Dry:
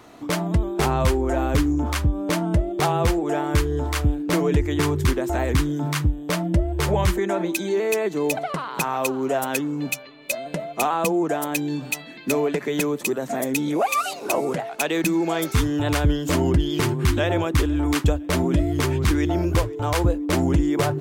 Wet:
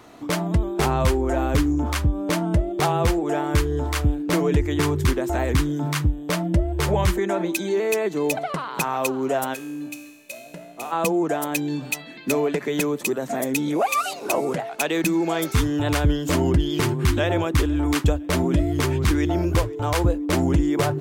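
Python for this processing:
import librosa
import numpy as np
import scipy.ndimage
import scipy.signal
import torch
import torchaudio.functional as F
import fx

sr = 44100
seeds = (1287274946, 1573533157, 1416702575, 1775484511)

y = fx.comb_fb(x, sr, f0_hz=59.0, decay_s=1.3, harmonics='all', damping=0.0, mix_pct=80, at=(9.53, 10.91), fade=0.02)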